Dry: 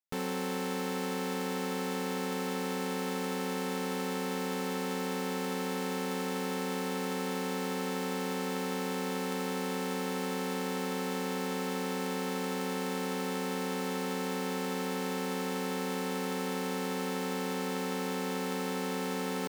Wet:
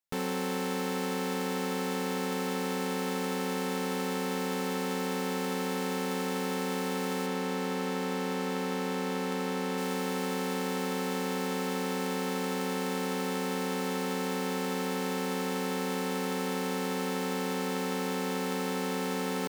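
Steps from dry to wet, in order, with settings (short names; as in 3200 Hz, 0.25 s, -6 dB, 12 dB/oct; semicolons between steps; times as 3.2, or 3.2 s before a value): 7.26–9.78 high shelf 5800 Hz -6 dB; gain +2 dB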